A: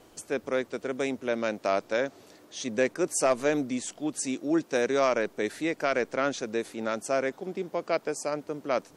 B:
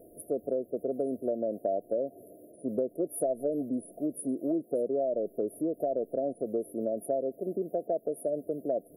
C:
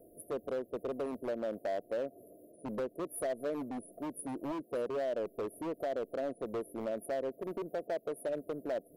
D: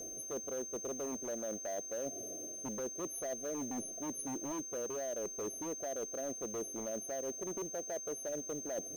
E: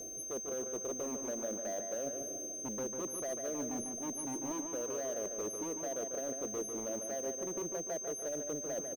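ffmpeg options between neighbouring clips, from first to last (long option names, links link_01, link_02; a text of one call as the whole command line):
ffmpeg -i in.wav -af "afftfilt=real='re*(1-between(b*sr/4096,720,9600))':imag='im*(1-between(b*sr/4096,720,9600))':win_size=4096:overlap=0.75,lowshelf=frequency=240:gain=-9,acompressor=threshold=-33dB:ratio=5,volume=6dB" out.wav
ffmpeg -i in.wav -filter_complex "[0:a]acrossover=split=520|1000[link_01][link_02][link_03];[link_01]aeval=exprs='0.0299*(abs(mod(val(0)/0.0299+3,4)-2)-1)':channel_layout=same[link_04];[link_04][link_02][link_03]amix=inputs=3:normalize=0,aeval=exprs='0.0944*(cos(1*acos(clip(val(0)/0.0944,-1,1)))-cos(1*PI/2))+0.0133*(cos(3*acos(clip(val(0)/0.0944,-1,1)))-cos(3*PI/2))+0.00168*(cos(6*acos(clip(val(0)/0.0944,-1,1)))-cos(6*PI/2))+0.00168*(cos(8*acos(clip(val(0)/0.0944,-1,1)))-cos(8*PI/2))':channel_layout=same,asoftclip=type=hard:threshold=-30dB" out.wav
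ffmpeg -i in.wav -af "areverse,acompressor=threshold=-46dB:ratio=6,areverse,aeval=exprs='val(0)+0.00316*sin(2*PI*6300*n/s)':channel_layout=same,acrusher=bits=5:mode=log:mix=0:aa=0.000001,volume=7dB" out.wav
ffmpeg -i in.wav -filter_complex "[0:a]asplit=2[link_01][link_02];[link_02]adelay=147,lowpass=frequency=3800:poles=1,volume=-5.5dB,asplit=2[link_03][link_04];[link_04]adelay=147,lowpass=frequency=3800:poles=1,volume=0.49,asplit=2[link_05][link_06];[link_06]adelay=147,lowpass=frequency=3800:poles=1,volume=0.49,asplit=2[link_07][link_08];[link_08]adelay=147,lowpass=frequency=3800:poles=1,volume=0.49,asplit=2[link_09][link_10];[link_10]adelay=147,lowpass=frequency=3800:poles=1,volume=0.49,asplit=2[link_11][link_12];[link_12]adelay=147,lowpass=frequency=3800:poles=1,volume=0.49[link_13];[link_01][link_03][link_05][link_07][link_09][link_11][link_13]amix=inputs=7:normalize=0" out.wav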